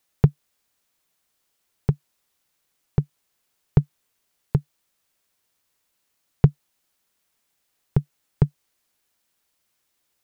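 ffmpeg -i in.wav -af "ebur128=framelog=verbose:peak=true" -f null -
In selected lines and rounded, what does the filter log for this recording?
Integrated loudness:
  I:         -25.5 LUFS
  Threshold: -36.3 LUFS
Loudness range:
  LRA:         3.8 LU
  Threshold: -50.2 LUFS
  LRA low:   -32.4 LUFS
  LRA high:  -28.5 LUFS
True peak:
  Peak:       -3.2 dBFS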